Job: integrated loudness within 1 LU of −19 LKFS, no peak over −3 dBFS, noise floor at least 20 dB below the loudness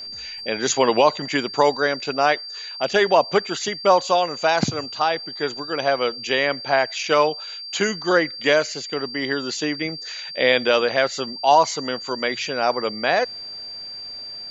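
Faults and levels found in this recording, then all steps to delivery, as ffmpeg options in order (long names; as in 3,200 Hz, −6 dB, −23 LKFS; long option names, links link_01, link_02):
interfering tone 4,700 Hz; level of the tone −32 dBFS; integrated loudness −21.0 LKFS; sample peak −4.0 dBFS; target loudness −19.0 LKFS
→ -af "bandreject=frequency=4700:width=30"
-af "volume=2dB,alimiter=limit=-3dB:level=0:latency=1"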